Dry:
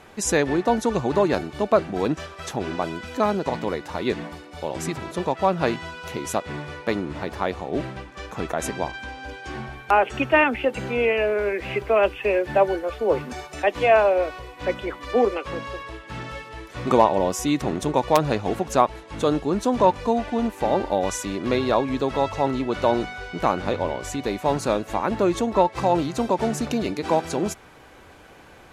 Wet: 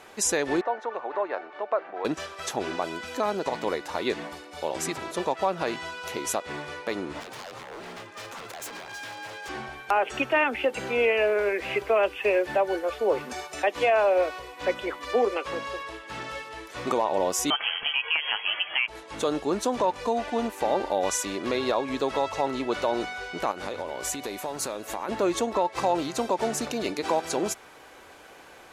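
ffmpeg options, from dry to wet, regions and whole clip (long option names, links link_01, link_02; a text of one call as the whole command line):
ffmpeg -i in.wav -filter_complex "[0:a]asettb=1/sr,asplit=3[link_01][link_02][link_03];[link_01]atrim=end=0.614[link_04];[link_02]atrim=start=0.61:end=2.05,asetpts=PTS-STARTPTS,afade=type=in:duration=0.004:curve=qsin,afade=type=out:start_time=1.436:duration=0.004:curve=qsin,acompressor=threshold=-28dB:ratio=1.5:attack=3.2:release=140:knee=1:detection=peak,asuperpass=centerf=1000:order=4:qfactor=0.66[link_05];[link_03]atrim=start=2.046[link_06];[link_04][link_05]acrossfade=duration=0.004:curve1=hsin:curve2=qsin[link_07];[link_07][link_06]acrossfade=duration=0.004:curve1=qsin:curve2=hsin,asettb=1/sr,asplit=3[link_08][link_09][link_10];[link_08]atrim=end=7.204[link_11];[link_09]atrim=start=7.2:end=9.49,asetpts=PTS-STARTPTS,afade=type=in:duration=0.004:curve=qsin,afade=type=out:start_time=2.286:duration=0.004:curve=qsin,afreqshift=46,acompressor=threshold=-29dB:ratio=10:attack=3.2:release=140:knee=1:detection=peak,aeval=exprs='0.0224*(abs(mod(val(0)/0.0224+3,4)-2)-1)':channel_layout=same[link_12];[link_10]atrim=start=9.486[link_13];[link_11][link_12]acrossfade=duration=0.004:curve1=hsin:curve2=qsin[link_14];[link_14][link_13]acrossfade=duration=0.004:curve1=qsin:curve2=hsin,asettb=1/sr,asplit=3[link_15][link_16][link_17];[link_15]atrim=end=17.504[link_18];[link_16]atrim=start=17.5:end=18.88,asetpts=PTS-STARTPTS,afade=type=in:duration=0.004:curve=qsin,afade=type=out:start_time=1.376:duration=0.004:curve=qsin,tiltshelf=frequency=790:gain=-9,lowpass=frequency=2900:width_type=q:width=0.5098,lowpass=frequency=2900:width_type=q:width=0.6013,lowpass=frequency=2900:width_type=q:width=0.9,lowpass=frequency=2900:width_type=q:width=2.563,afreqshift=-3400[link_19];[link_17]atrim=start=18.876[link_20];[link_18][link_19]acrossfade=duration=0.004:curve1=hsin:curve2=qsin[link_21];[link_21][link_20]acrossfade=duration=0.004:curve1=qsin:curve2=hsin,asettb=1/sr,asplit=3[link_22][link_23][link_24];[link_22]atrim=end=23.514[link_25];[link_23]atrim=start=23.51:end=25.09,asetpts=PTS-STARTPTS,afade=type=in:duration=0.004:curve=qsin,afade=type=out:start_time=1.576:duration=0.004:curve=qsin,highshelf=frequency=9700:gain=11,acompressor=threshold=-26dB:ratio=10:attack=3.2:release=140:knee=1:detection=peak[link_26];[link_24]atrim=start=25.086[link_27];[link_25][link_26]acrossfade=duration=0.004:curve1=hsin:curve2=qsin[link_28];[link_28][link_27]acrossfade=duration=0.004:curve1=qsin:curve2=hsin,bass=frequency=250:gain=-12,treble=frequency=4000:gain=3,alimiter=limit=-14dB:level=0:latency=1:release=136" out.wav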